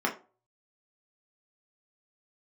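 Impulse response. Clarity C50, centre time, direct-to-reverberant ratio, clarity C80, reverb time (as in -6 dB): 12.5 dB, 17 ms, -1.0 dB, 18.0 dB, 0.35 s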